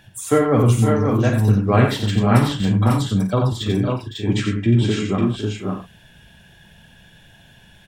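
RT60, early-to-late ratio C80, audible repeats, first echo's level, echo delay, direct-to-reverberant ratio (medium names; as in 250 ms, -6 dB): no reverb, no reverb, 5, -11.0 dB, 51 ms, no reverb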